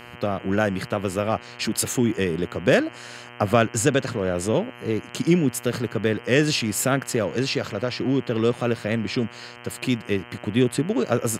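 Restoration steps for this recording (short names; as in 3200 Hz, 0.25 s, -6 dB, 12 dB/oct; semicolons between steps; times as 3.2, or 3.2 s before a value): de-click; de-hum 120.6 Hz, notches 26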